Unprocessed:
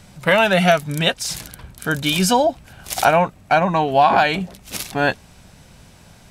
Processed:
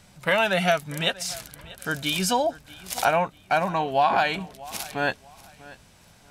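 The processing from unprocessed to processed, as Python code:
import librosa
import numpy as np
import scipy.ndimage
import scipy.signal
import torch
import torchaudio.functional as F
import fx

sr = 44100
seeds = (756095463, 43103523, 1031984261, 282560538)

y = fx.low_shelf(x, sr, hz=450.0, db=-4.5)
y = fx.echo_feedback(y, sr, ms=639, feedback_pct=28, wet_db=-20.0)
y = y * 10.0 ** (-5.5 / 20.0)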